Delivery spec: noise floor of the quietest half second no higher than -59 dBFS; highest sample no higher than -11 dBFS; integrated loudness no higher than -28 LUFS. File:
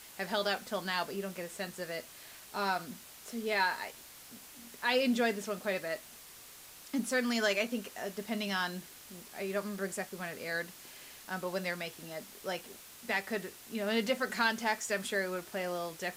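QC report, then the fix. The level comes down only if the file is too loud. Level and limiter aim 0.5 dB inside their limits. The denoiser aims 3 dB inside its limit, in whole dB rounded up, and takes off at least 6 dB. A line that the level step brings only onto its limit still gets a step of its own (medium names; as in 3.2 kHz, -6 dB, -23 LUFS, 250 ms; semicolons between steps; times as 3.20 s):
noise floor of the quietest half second -53 dBFS: fail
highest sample -16.0 dBFS: pass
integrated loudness -34.5 LUFS: pass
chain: noise reduction 9 dB, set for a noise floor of -53 dBFS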